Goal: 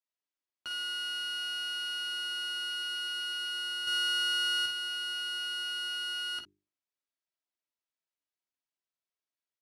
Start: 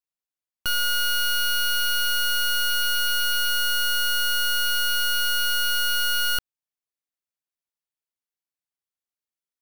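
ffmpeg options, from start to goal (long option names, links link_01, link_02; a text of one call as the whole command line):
ffmpeg -i in.wav -filter_complex "[0:a]aeval=exprs='if(lt(val(0),0),0.708*val(0),val(0))':channel_layout=same,bandreject=frequency=50:width_type=h:width=6,bandreject=frequency=100:width_type=h:width=6,bandreject=frequency=150:width_type=h:width=6,bandreject=frequency=200:width_type=h:width=6,bandreject=frequency=250:width_type=h:width=6,bandreject=frequency=300:width_type=h:width=6,bandreject=frequency=350:width_type=h:width=6,bandreject=frequency=400:width_type=h:width=6,aecho=1:1:3.1:0.44,alimiter=level_in=7dB:limit=-24dB:level=0:latency=1:release=26,volume=-7dB,asettb=1/sr,asplit=3[link_01][link_02][link_03];[link_01]atrim=end=3.874[link_04];[link_02]atrim=start=3.87:end=4.66,asetpts=PTS-STARTPTS,afade=type=in:duration=0.004:curve=qsin,afade=type=out:start_time=0.786:duration=0.004:curve=qsin,acontrast=45[link_05];[link_03]atrim=start=4.656[link_06];[link_04][link_05]acrossfade=duration=0.004:curve1=hsin:curve2=qsin[link_07];[link_07][link_06]acrossfade=duration=0.004:curve1=qsin:curve2=hsin,aecho=1:1:14|50|60:0.562|0.355|0.266,acrusher=bits=8:mode=log:mix=0:aa=0.000001,highpass=140,lowpass=5800,volume=-2.5dB" out.wav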